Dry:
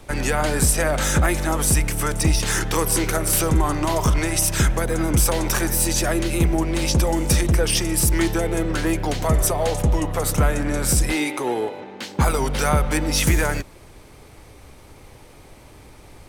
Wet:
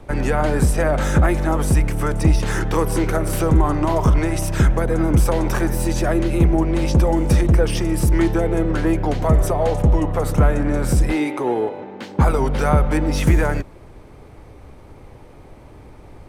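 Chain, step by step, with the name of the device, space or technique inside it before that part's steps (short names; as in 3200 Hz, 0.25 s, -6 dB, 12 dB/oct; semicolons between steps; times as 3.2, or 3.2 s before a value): through cloth (high shelf 2300 Hz -15.5 dB); gain +4 dB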